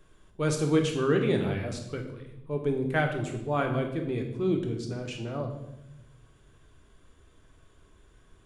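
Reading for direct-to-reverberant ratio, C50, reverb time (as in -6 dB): 3.0 dB, 7.0 dB, 0.90 s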